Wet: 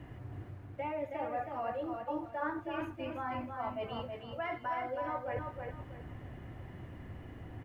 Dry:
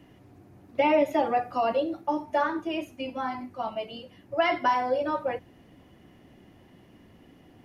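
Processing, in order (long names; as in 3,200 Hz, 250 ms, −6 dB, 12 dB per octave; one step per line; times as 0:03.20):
reversed playback
downward compressor 6 to 1, threshold −40 dBFS, peak gain reduction 20 dB
reversed playback
bit reduction 11 bits
drawn EQ curve 120 Hz 0 dB, 190 Hz −12 dB, 1,700 Hz −6 dB, 5,000 Hz −24 dB
repeating echo 321 ms, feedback 27%, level −5 dB
level +12 dB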